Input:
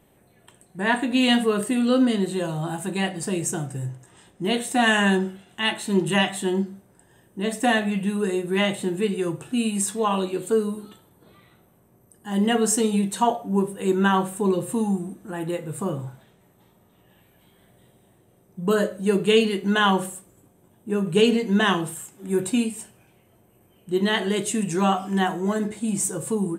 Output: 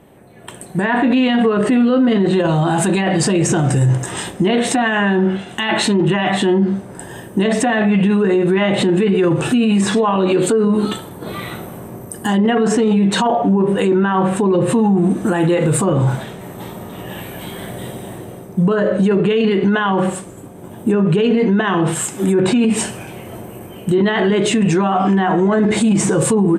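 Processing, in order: bass shelf 74 Hz -9 dB; low-pass that closes with the level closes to 2.2 kHz, closed at -20.5 dBFS; level rider gain up to 15.5 dB; loudness maximiser +21 dB; tape noise reduction on one side only decoder only; trim -7 dB

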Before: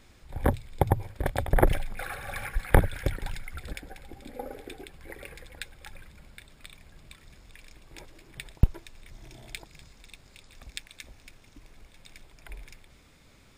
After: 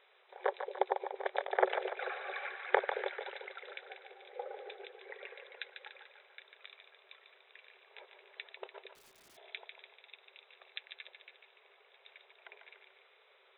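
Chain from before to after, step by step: two-band feedback delay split 510 Hz, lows 222 ms, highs 146 ms, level -7 dB; FFT band-pass 370–4000 Hz; 8.95–9.37 s: integer overflow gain 52 dB; trim -4 dB

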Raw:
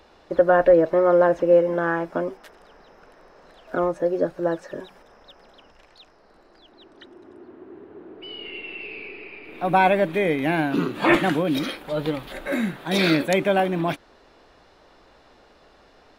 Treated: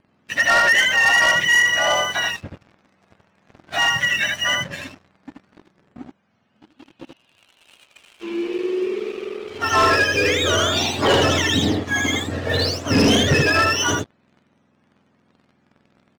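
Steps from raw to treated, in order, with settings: spectrum inverted on a logarithmic axis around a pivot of 1 kHz; steep low-pass 8.6 kHz; bass shelf 230 Hz +8 dB; delay 79 ms -3.5 dB; waveshaping leveller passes 3; trim -5 dB

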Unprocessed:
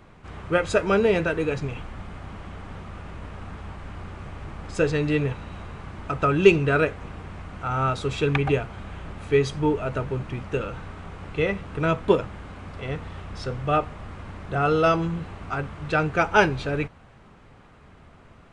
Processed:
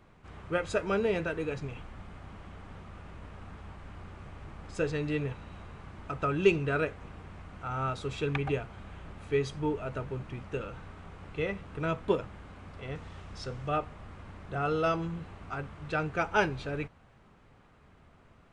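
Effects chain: 12.95–13.69 s: peaking EQ 6.2 kHz +5.5 dB 1.3 oct; trim -8.5 dB

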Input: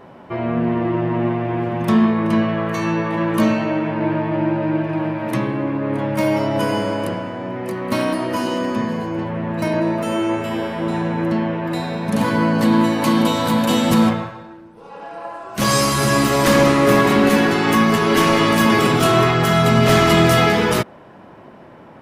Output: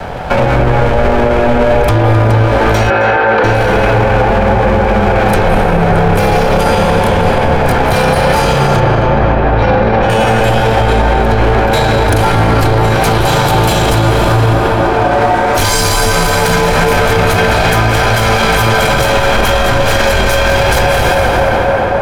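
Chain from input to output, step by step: comb filter that takes the minimum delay 1.2 ms; reverberation RT60 2.2 s, pre-delay 161 ms, DRR 8 dB; compression, threshold -21 dBFS, peak gain reduction 10 dB; 8.80–10.10 s: distance through air 200 m; frequency shift -110 Hz; 2.90–3.44 s: cabinet simulation 270–3900 Hz, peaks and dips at 520 Hz +8 dB, 1.5 kHz +7 dB, 3.4 kHz -4 dB; tape echo 265 ms, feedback 87%, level -6.5 dB, low-pass 2.5 kHz; loudness maximiser +23.5 dB; trim -1 dB

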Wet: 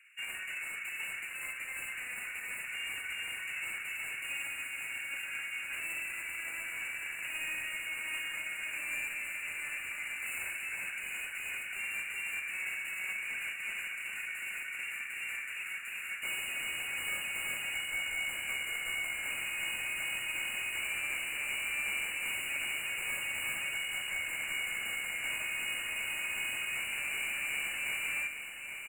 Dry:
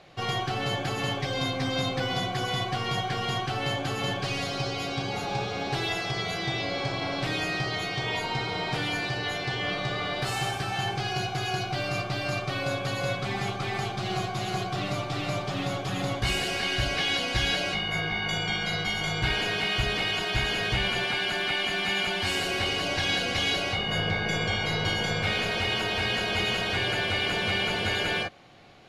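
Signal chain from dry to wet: comb filter that takes the minimum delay 0.31 ms; steep high-pass 1.5 kHz 48 dB/octave; peaking EQ 2.2 kHz +5.5 dB 0.2 oct; hard clipper -33 dBFS, distortion -7 dB; brick-wall FIR band-stop 2.9–7 kHz; feedback delay 823 ms, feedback 59%, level -9 dB; on a send at -10 dB: reverberation RT60 1.1 s, pre-delay 17 ms

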